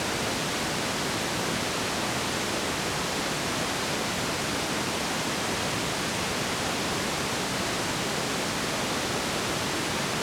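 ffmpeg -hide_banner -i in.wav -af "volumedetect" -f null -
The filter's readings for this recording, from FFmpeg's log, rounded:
mean_volume: -28.8 dB
max_volume: -15.2 dB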